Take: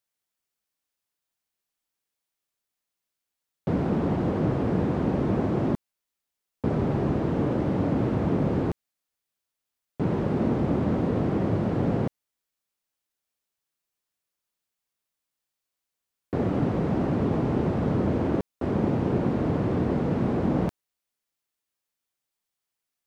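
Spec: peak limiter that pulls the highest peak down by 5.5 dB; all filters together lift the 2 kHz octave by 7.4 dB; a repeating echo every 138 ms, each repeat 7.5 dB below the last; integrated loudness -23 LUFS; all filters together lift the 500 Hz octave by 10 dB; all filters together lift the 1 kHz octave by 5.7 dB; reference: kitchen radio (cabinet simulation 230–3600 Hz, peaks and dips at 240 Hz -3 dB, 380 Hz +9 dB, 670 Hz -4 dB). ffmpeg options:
-af "equalizer=f=500:t=o:g=7,equalizer=f=1000:t=o:g=4.5,equalizer=f=2000:t=o:g=7.5,alimiter=limit=0.2:level=0:latency=1,highpass=230,equalizer=f=240:t=q:w=4:g=-3,equalizer=f=380:t=q:w=4:g=9,equalizer=f=670:t=q:w=4:g=-4,lowpass=f=3600:w=0.5412,lowpass=f=3600:w=1.3066,aecho=1:1:138|276|414|552|690:0.422|0.177|0.0744|0.0312|0.0131,volume=0.891"

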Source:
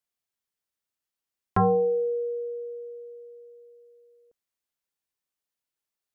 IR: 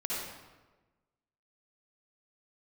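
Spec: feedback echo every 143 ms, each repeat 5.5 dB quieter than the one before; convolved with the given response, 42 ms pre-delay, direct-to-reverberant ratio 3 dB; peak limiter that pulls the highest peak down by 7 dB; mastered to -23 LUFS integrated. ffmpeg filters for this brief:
-filter_complex "[0:a]alimiter=limit=0.075:level=0:latency=1,aecho=1:1:143|286|429|572|715|858|1001:0.531|0.281|0.149|0.079|0.0419|0.0222|0.0118,asplit=2[s0][s1];[1:a]atrim=start_sample=2205,adelay=42[s2];[s1][s2]afir=irnorm=-1:irlink=0,volume=0.398[s3];[s0][s3]amix=inputs=2:normalize=0,volume=0.794"

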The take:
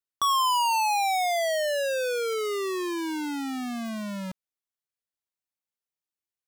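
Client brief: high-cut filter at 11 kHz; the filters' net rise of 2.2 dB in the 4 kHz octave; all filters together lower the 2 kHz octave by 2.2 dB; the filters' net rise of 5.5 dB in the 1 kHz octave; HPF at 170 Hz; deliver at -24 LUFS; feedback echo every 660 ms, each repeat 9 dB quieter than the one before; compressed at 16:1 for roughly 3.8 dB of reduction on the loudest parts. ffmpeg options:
-af "highpass=170,lowpass=11000,equalizer=f=1000:t=o:g=7.5,equalizer=f=2000:t=o:g=-6.5,equalizer=f=4000:t=o:g=5,acompressor=threshold=0.1:ratio=16,aecho=1:1:660|1320|1980|2640:0.355|0.124|0.0435|0.0152,volume=1.12"

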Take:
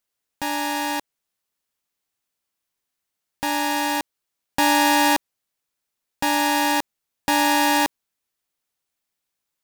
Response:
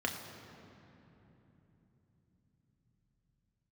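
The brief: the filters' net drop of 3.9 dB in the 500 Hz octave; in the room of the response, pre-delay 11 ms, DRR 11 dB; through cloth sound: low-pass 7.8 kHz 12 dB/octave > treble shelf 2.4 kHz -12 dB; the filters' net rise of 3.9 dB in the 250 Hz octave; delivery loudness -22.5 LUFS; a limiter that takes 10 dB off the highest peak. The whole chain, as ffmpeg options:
-filter_complex "[0:a]equalizer=f=250:t=o:g=7,equalizer=f=500:t=o:g=-5.5,alimiter=limit=0.141:level=0:latency=1,asplit=2[s0][s1];[1:a]atrim=start_sample=2205,adelay=11[s2];[s1][s2]afir=irnorm=-1:irlink=0,volume=0.15[s3];[s0][s3]amix=inputs=2:normalize=0,lowpass=7800,highshelf=f=2400:g=-12,volume=1.88"

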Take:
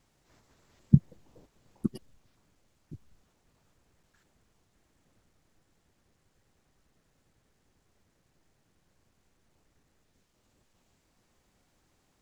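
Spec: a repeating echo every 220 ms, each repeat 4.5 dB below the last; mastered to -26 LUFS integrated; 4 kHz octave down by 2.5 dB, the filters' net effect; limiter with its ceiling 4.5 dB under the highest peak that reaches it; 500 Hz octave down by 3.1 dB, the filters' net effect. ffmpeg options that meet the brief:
-af "equalizer=f=500:t=o:g=-5.5,equalizer=f=4000:t=o:g=-3.5,alimiter=limit=0.376:level=0:latency=1,aecho=1:1:220|440|660|880|1100|1320|1540|1760|1980:0.596|0.357|0.214|0.129|0.0772|0.0463|0.0278|0.0167|0.01,volume=2.66"

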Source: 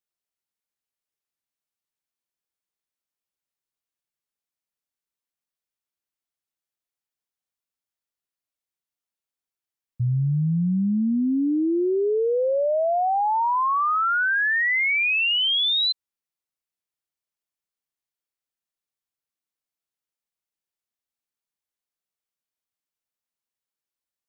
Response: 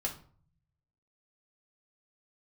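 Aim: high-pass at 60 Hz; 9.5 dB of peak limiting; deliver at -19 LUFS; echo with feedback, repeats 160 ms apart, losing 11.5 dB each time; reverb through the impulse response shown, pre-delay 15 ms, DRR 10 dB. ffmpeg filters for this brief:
-filter_complex "[0:a]highpass=60,alimiter=level_in=1.58:limit=0.0631:level=0:latency=1,volume=0.631,aecho=1:1:160|320|480:0.266|0.0718|0.0194,asplit=2[s0][s1];[1:a]atrim=start_sample=2205,adelay=15[s2];[s1][s2]afir=irnorm=-1:irlink=0,volume=0.237[s3];[s0][s3]amix=inputs=2:normalize=0,volume=3.55"

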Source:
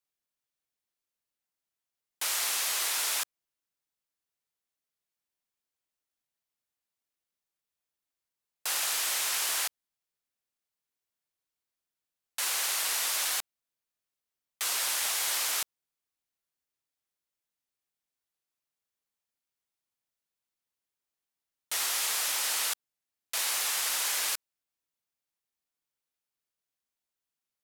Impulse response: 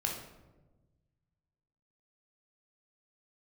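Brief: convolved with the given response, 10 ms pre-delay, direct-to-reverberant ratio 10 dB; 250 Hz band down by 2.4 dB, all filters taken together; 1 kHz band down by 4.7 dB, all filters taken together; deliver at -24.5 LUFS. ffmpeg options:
-filter_complex "[0:a]equalizer=f=250:t=o:g=-3,equalizer=f=1000:t=o:g=-6,asplit=2[s0][s1];[1:a]atrim=start_sample=2205,adelay=10[s2];[s1][s2]afir=irnorm=-1:irlink=0,volume=0.211[s3];[s0][s3]amix=inputs=2:normalize=0,volume=1.58"

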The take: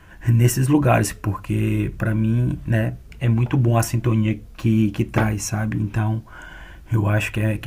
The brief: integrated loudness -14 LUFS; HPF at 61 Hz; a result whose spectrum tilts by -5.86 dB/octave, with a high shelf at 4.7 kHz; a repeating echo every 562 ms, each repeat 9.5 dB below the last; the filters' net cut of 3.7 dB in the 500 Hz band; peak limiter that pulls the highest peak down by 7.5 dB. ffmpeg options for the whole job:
-af "highpass=61,equalizer=f=500:t=o:g=-5.5,highshelf=f=4700:g=4,alimiter=limit=0.224:level=0:latency=1,aecho=1:1:562|1124|1686|2248:0.335|0.111|0.0365|0.012,volume=2.82"

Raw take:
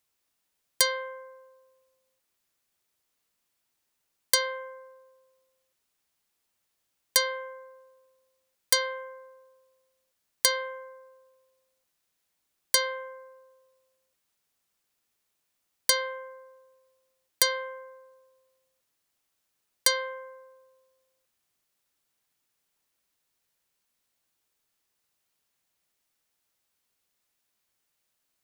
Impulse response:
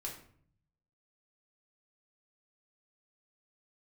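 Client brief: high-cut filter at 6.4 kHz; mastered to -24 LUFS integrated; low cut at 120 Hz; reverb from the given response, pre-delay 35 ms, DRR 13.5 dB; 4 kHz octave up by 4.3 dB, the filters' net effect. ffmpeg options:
-filter_complex "[0:a]highpass=120,lowpass=6400,equalizer=f=4000:t=o:g=6,asplit=2[s0][s1];[1:a]atrim=start_sample=2205,adelay=35[s2];[s1][s2]afir=irnorm=-1:irlink=0,volume=0.237[s3];[s0][s3]amix=inputs=2:normalize=0,volume=1.12"

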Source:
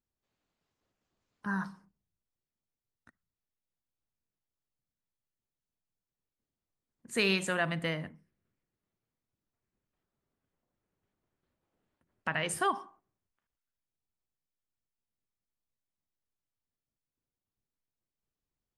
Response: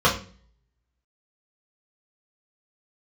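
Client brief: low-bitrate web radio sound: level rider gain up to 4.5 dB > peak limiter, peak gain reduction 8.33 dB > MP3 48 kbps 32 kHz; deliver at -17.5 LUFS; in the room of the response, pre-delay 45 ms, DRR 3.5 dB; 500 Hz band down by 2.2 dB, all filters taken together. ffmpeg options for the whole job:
-filter_complex "[0:a]equalizer=f=500:t=o:g=-3,asplit=2[s0][s1];[1:a]atrim=start_sample=2205,adelay=45[s2];[s1][s2]afir=irnorm=-1:irlink=0,volume=0.0708[s3];[s0][s3]amix=inputs=2:normalize=0,dynaudnorm=m=1.68,alimiter=limit=0.0794:level=0:latency=1,volume=6.68" -ar 32000 -c:a libmp3lame -b:a 48k

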